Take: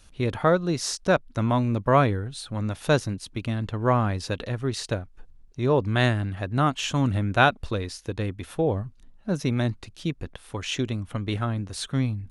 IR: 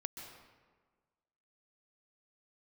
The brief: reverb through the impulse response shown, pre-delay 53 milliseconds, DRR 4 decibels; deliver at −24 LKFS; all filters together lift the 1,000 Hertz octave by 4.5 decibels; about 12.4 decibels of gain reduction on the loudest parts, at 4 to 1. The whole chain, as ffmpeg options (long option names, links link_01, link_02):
-filter_complex "[0:a]equalizer=frequency=1000:width_type=o:gain=6,acompressor=threshold=-25dB:ratio=4,asplit=2[link_01][link_02];[1:a]atrim=start_sample=2205,adelay=53[link_03];[link_02][link_03]afir=irnorm=-1:irlink=0,volume=-2.5dB[link_04];[link_01][link_04]amix=inputs=2:normalize=0,volume=5.5dB"